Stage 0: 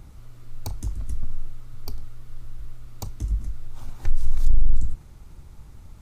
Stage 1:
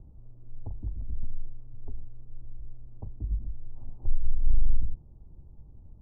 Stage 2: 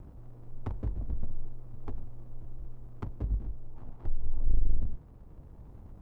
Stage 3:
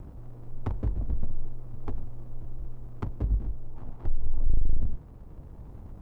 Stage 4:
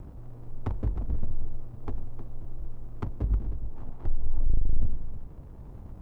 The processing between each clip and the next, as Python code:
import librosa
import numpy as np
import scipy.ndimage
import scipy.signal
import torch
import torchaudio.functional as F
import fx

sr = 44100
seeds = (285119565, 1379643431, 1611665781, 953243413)

y1 = scipy.signal.sosfilt(scipy.signal.bessel(8, 520.0, 'lowpass', norm='mag', fs=sr, output='sos'), x)
y1 = y1 * 10.0 ** (-5.0 / 20.0)
y2 = fx.lower_of_two(y1, sr, delay_ms=0.76)
y2 = fx.low_shelf(y2, sr, hz=190.0, db=-11.5)
y2 = fx.rider(y2, sr, range_db=4, speed_s=2.0)
y2 = y2 * 10.0 ** (8.5 / 20.0)
y3 = 10.0 ** (-15.5 / 20.0) * np.tanh(y2 / 10.0 ** (-15.5 / 20.0))
y3 = y3 * 10.0 ** (5.0 / 20.0)
y4 = y3 + 10.0 ** (-11.5 / 20.0) * np.pad(y3, (int(312 * sr / 1000.0), 0))[:len(y3)]